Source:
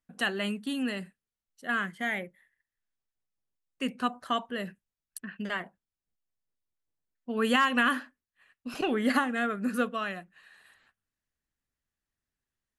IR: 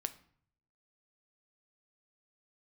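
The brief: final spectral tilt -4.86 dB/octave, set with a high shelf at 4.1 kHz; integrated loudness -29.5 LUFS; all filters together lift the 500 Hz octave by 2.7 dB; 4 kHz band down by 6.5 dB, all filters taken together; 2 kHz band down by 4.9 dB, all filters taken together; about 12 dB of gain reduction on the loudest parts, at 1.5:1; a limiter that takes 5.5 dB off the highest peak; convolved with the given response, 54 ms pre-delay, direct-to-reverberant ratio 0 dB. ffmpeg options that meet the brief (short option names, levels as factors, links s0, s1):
-filter_complex "[0:a]equalizer=f=500:t=o:g=3.5,equalizer=f=2000:t=o:g=-5.5,equalizer=f=4000:t=o:g=-9,highshelf=f=4100:g=3.5,acompressor=threshold=0.00158:ratio=1.5,alimiter=level_in=2.24:limit=0.0631:level=0:latency=1,volume=0.447,asplit=2[s0][s1];[1:a]atrim=start_sample=2205,adelay=54[s2];[s1][s2]afir=irnorm=-1:irlink=0,volume=1.06[s3];[s0][s3]amix=inputs=2:normalize=0,volume=3.35"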